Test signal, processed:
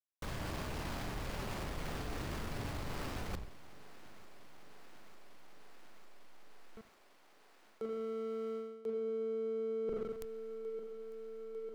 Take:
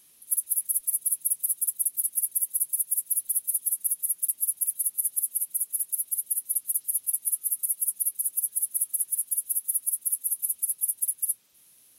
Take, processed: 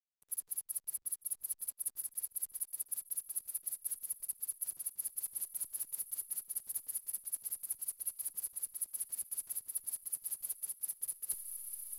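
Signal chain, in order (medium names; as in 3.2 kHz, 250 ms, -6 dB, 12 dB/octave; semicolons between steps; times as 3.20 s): octave divider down 1 oct, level -3 dB; in parallel at -2 dB: level held to a coarse grid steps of 24 dB; on the sum: spring tank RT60 1.1 s, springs 39/46 ms, chirp 65 ms, DRR 3 dB; hysteresis with a dead band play -32 dBFS; dynamic bell 4.7 kHz, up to +6 dB, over -56 dBFS, Q 5.1; thinning echo 899 ms, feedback 85%, high-pass 180 Hz, level -24 dB; reverse; compression 10:1, threshold -37 dBFS; reverse; trim +1 dB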